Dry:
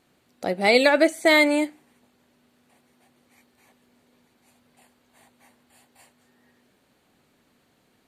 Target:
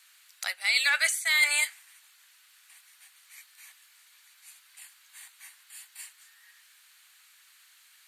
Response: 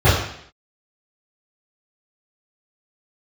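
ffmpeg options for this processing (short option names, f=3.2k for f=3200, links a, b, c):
-af "highpass=f=1.4k:w=0.5412,highpass=f=1.4k:w=1.3066,equalizer=f=11k:w=0.43:g=7,areverse,acompressor=threshold=-30dB:ratio=8,areverse,volume=8.5dB"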